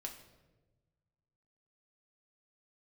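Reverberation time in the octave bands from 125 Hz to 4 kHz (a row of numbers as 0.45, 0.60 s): 2.1, 1.6, 1.4, 0.95, 0.85, 0.75 s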